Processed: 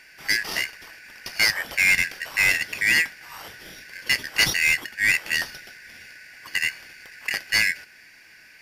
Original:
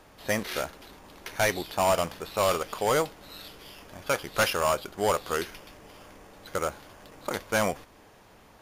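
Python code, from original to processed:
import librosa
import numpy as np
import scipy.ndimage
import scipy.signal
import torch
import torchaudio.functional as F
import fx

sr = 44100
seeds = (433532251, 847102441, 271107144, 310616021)

y = fx.band_shuffle(x, sr, order='3142')
y = F.gain(torch.from_numpy(y), 4.5).numpy()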